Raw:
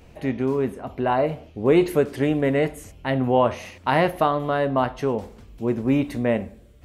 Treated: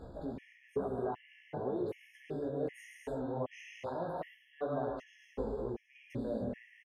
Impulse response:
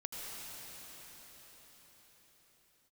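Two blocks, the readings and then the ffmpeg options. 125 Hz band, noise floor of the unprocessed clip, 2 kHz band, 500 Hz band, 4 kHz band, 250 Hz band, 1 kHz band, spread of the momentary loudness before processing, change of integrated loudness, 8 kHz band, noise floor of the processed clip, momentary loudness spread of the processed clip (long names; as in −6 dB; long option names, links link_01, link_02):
−17.5 dB, −49 dBFS, −21.5 dB, −15.5 dB, −22.0 dB, −17.5 dB, −18.5 dB, 9 LU, −17.0 dB, below −15 dB, −66 dBFS, 9 LU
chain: -filter_complex "[0:a]asplit=2[link_01][link_02];[link_02]adelay=303.2,volume=-16dB,highshelf=frequency=4000:gain=-6.82[link_03];[link_01][link_03]amix=inputs=2:normalize=0,areverse,acompressor=threshold=-32dB:ratio=12,areverse,aemphasis=mode=reproduction:type=50kf,alimiter=level_in=10dB:limit=-24dB:level=0:latency=1:release=241,volume=-10dB,equalizer=frequency=490:width_type=o:width=1.9:gain=5.5[link_04];[1:a]atrim=start_sample=2205,afade=type=out:start_time=0.35:duration=0.01,atrim=end_sample=15876[link_05];[link_04][link_05]afir=irnorm=-1:irlink=0,flanger=delay=15:depth=3.8:speed=2.3,afftfilt=real='re*gt(sin(2*PI*1.3*pts/sr)*(1-2*mod(floor(b*sr/1024/1700),2)),0)':imag='im*gt(sin(2*PI*1.3*pts/sr)*(1-2*mod(floor(b*sr/1024/1700),2)),0)':win_size=1024:overlap=0.75,volume=7.5dB"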